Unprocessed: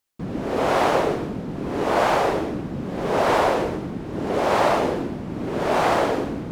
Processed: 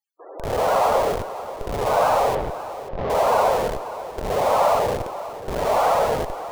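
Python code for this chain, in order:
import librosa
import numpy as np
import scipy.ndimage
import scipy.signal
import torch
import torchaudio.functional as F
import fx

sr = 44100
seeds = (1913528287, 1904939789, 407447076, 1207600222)

p1 = scipy.signal.sosfilt(scipy.signal.cheby2(4, 40, 230.0, 'highpass', fs=sr, output='sos'), x)
p2 = fx.spec_topn(p1, sr, count=32)
p3 = fx.schmitt(p2, sr, flips_db=-28.0)
p4 = p2 + (p3 * librosa.db_to_amplitude(-3.0))
p5 = fx.air_absorb(p4, sr, metres=270.0, at=(2.35, 3.1))
y = p5 + 10.0 ** (-14.0 / 20.0) * np.pad(p5, (int(537 * sr / 1000.0), 0))[:len(p5)]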